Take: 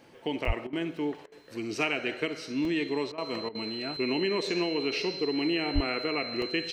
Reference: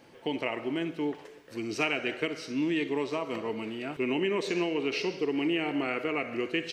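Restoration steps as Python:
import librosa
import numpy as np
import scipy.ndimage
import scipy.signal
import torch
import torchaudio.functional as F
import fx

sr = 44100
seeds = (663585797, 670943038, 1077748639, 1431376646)

y = fx.notch(x, sr, hz=4100.0, q=30.0)
y = fx.highpass(y, sr, hz=140.0, slope=24, at=(0.46, 0.58), fade=0.02)
y = fx.highpass(y, sr, hz=140.0, slope=24, at=(5.74, 5.86), fade=0.02)
y = fx.fix_interpolate(y, sr, at_s=(0.45, 0.97, 2.65, 6.42), length_ms=1.9)
y = fx.fix_interpolate(y, sr, at_s=(0.67, 1.26, 3.12, 3.49), length_ms=58.0)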